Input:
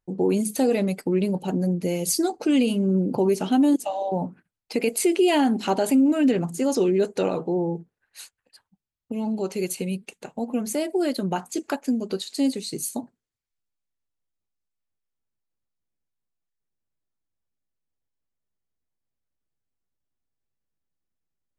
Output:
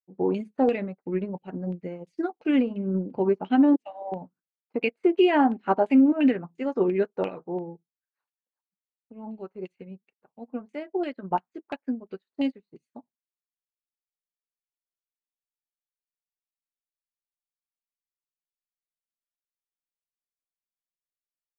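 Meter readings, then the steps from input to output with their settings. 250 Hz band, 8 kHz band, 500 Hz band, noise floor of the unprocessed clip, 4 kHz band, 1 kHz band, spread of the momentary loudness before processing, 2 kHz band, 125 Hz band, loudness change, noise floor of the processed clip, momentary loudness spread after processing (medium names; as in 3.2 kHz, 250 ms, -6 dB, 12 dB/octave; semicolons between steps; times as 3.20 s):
-2.5 dB, under -40 dB, -3.0 dB, -84 dBFS, -8.5 dB, 0.0 dB, 10 LU, -1.0 dB, -7.5 dB, -2.0 dB, under -85 dBFS, 19 LU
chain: LFO low-pass saw down 2.9 Hz 900–2800 Hz; upward expansion 2.5:1, over -40 dBFS; trim +1.5 dB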